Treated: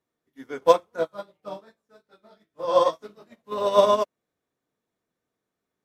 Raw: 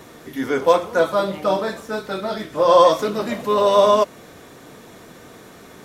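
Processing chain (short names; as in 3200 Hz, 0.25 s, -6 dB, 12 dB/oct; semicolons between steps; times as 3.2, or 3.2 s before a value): 0.96–3.52 chorus 2.5 Hz, delay 17.5 ms, depth 2.9 ms; upward expander 2.5:1, over -37 dBFS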